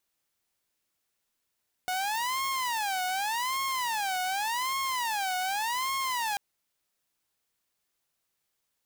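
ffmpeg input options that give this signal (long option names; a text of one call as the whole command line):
ffmpeg -f lavfi -i "aevalsrc='0.0531*(2*mod((907*t-173/(2*PI*0.86)*sin(2*PI*0.86*t)),1)-1)':duration=4.49:sample_rate=44100" out.wav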